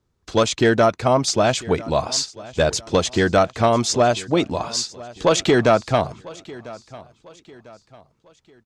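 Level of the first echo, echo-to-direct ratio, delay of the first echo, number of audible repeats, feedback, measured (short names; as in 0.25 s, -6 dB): -20.0 dB, -19.5 dB, 0.998 s, 2, 39%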